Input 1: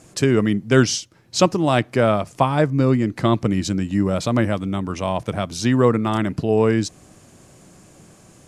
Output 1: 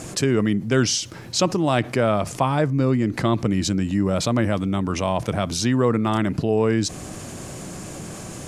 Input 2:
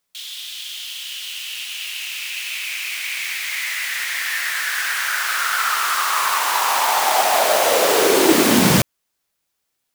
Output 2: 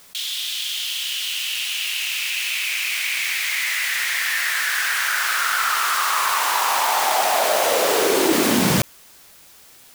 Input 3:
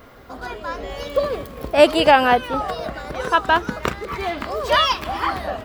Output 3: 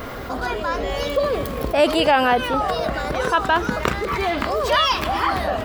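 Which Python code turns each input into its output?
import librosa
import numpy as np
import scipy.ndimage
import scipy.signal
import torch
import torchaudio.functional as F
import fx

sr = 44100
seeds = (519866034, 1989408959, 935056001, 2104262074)

y = fx.env_flatten(x, sr, amount_pct=50)
y = y * librosa.db_to_amplitude(-5.5)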